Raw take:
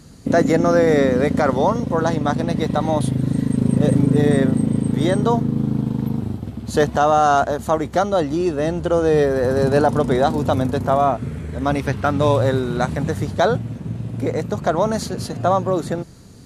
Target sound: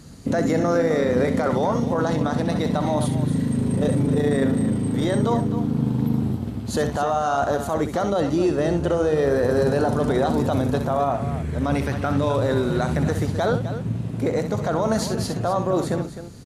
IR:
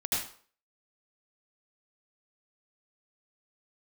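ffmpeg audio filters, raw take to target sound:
-filter_complex "[0:a]alimiter=limit=0.211:level=0:latency=1:release=12,asplit=2[s0][s1];[s1]aecho=0:1:64|258:0.355|0.266[s2];[s0][s2]amix=inputs=2:normalize=0"

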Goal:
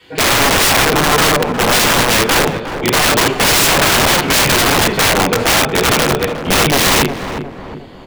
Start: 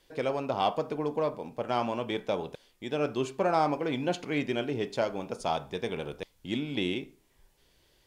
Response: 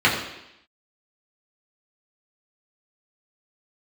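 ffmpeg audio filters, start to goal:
-filter_complex "[1:a]atrim=start_sample=2205,afade=t=out:st=0.15:d=0.01,atrim=end_sample=7056[s0];[0:a][s0]afir=irnorm=-1:irlink=0,acrossover=split=3400[s1][s2];[s2]acompressor=threshold=0.00891:ratio=4:attack=1:release=60[s3];[s1][s3]amix=inputs=2:normalize=0,aeval=exprs='(mod(3.16*val(0)+1,2)-1)/3.16':c=same,asplit=2[s4][s5];[s5]adelay=360,lowpass=f=1200:p=1,volume=0.422,asplit=2[s6][s7];[s7]adelay=360,lowpass=f=1200:p=1,volume=0.51,asplit=2[s8][s9];[s9]adelay=360,lowpass=f=1200:p=1,volume=0.51,asplit=2[s10][s11];[s11]adelay=360,lowpass=f=1200:p=1,volume=0.51,asplit=2[s12][s13];[s13]adelay=360,lowpass=f=1200:p=1,volume=0.51,asplit=2[s14][s15];[s15]adelay=360,lowpass=f=1200:p=1,volume=0.51[s16];[s4][s6][s8][s10][s12][s14][s16]amix=inputs=7:normalize=0,volume=1.41"

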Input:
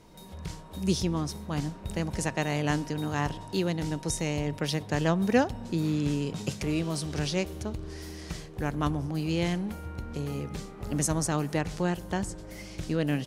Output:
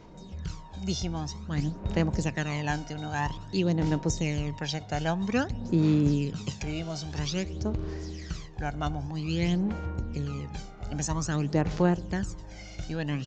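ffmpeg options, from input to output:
-af "aphaser=in_gain=1:out_gain=1:delay=1.4:decay=0.61:speed=0.51:type=sinusoidal,aresample=16000,aresample=44100,volume=0.708"

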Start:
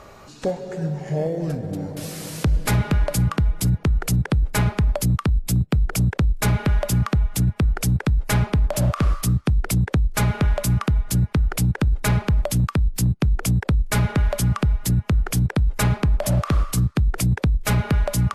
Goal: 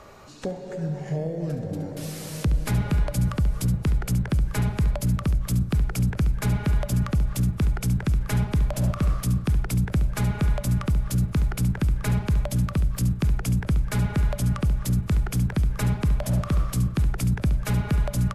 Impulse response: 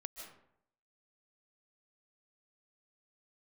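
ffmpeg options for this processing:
-filter_complex "[0:a]aecho=1:1:1196|2392|3588|4784|5980:0.126|0.0705|0.0395|0.0221|0.0124,asplit=2[s0][s1];[1:a]atrim=start_sample=2205,asetrate=37044,aresample=44100,adelay=70[s2];[s1][s2]afir=irnorm=-1:irlink=0,volume=0.447[s3];[s0][s3]amix=inputs=2:normalize=0,acrossover=split=310[s4][s5];[s5]acompressor=threshold=0.0251:ratio=2[s6];[s4][s6]amix=inputs=2:normalize=0,volume=0.708"

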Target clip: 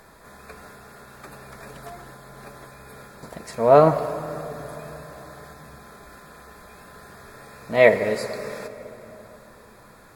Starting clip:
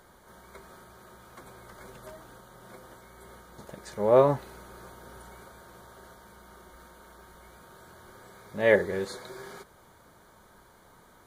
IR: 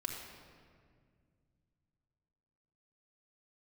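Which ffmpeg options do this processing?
-filter_complex "[0:a]asetrate=48951,aresample=44100,asplit=2[s0][s1];[1:a]atrim=start_sample=2205,asetrate=22050,aresample=44100[s2];[s1][s2]afir=irnorm=-1:irlink=0,volume=0.282[s3];[s0][s3]amix=inputs=2:normalize=0,volume=1.58"

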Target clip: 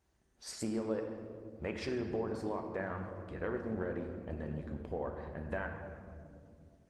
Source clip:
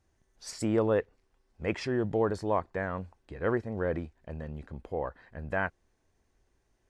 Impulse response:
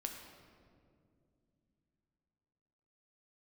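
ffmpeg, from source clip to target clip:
-filter_complex "[0:a]highpass=f=41:w=0.5412,highpass=f=41:w=1.3066,equalizer=f=120:w=1.6:g=-3.5,acompressor=threshold=0.0224:ratio=16[s0];[1:a]atrim=start_sample=2205[s1];[s0][s1]afir=irnorm=-1:irlink=0,volume=1.26" -ar 48000 -c:a libopus -b:a 20k

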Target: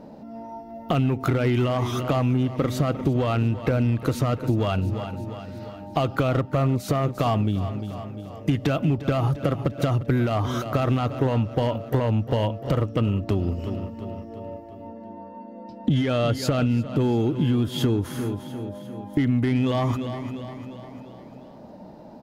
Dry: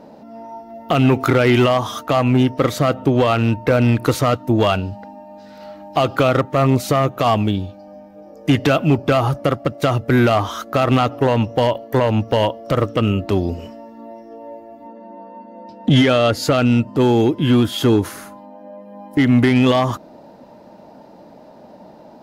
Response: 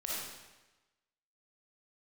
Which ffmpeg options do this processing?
-filter_complex "[0:a]lowshelf=f=240:g=10.5,asplit=2[s0][s1];[s1]aecho=0:1:349|698|1047|1396|1745:0.178|0.096|0.0519|0.028|0.0151[s2];[s0][s2]amix=inputs=2:normalize=0,acompressor=threshold=0.2:ratio=6,volume=0.562"

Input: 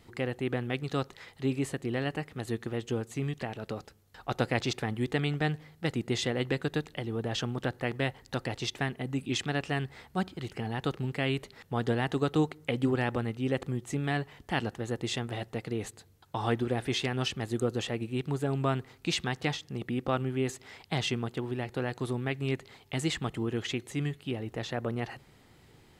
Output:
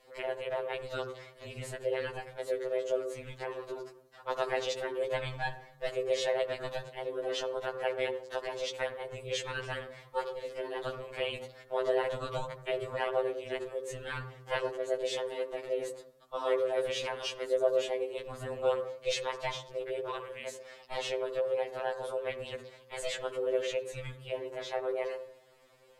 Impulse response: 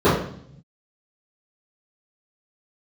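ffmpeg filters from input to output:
-filter_complex "[0:a]aeval=exprs='val(0)*sin(2*PI*160*n/s)':c=same,lowshelf=f=370:t=q:w=3:g=-9,asplit=2[s0][s1];[1:a]atrim=start_sample=2205,adelay=49[s2];[s1][s2]afir=irnorm=-1:irlink=0,volume=0.0211[s3];[s0][s3]amix=inputs=2:normalize=0,afftfilt=real='re*2.45*eq(mod(b,6),0)':imag='im*2.45*eq(mod(b,6),0)':win_size=2048:overlap=0.75,volume=1.19"

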